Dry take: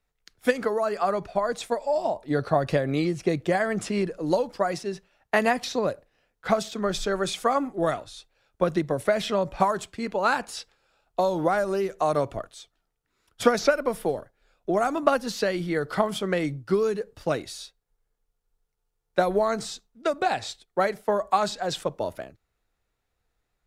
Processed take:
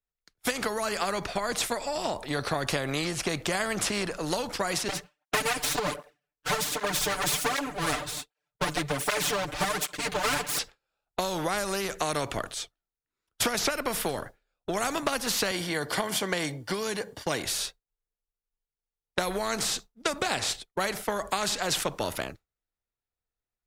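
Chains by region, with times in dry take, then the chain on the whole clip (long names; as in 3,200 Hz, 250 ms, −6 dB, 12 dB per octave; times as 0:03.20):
0:04.88–0:10.59: lower of the sound and its delayed copy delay 6.8 ms + comb filter 6.7 ms, depth 93% + through-zero flanger with one copy inverted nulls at 1.3 Hz, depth 5.7 ms
0:15.51–0:17.44: high-pass filter 63 Hz + notch comb filter 1,300 Hz
whole clip: downward expander −41 dBFS; downward compressor 3 to 1, threshold −24 dBFS; every bin compressed towards the loudest bin 2 to 1; level +3.5 dB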